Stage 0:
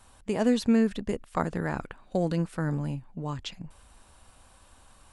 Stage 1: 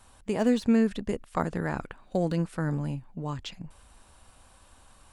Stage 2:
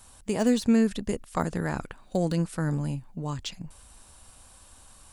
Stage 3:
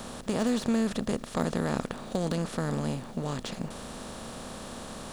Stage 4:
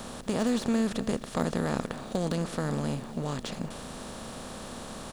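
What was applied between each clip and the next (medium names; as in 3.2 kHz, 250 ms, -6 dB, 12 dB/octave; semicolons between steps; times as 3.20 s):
de-esser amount 90%
tone controls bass +2 dB, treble +9 dB
spectral levelling over time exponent 0.4; trim -7 dB
delay 260 ms -16 dB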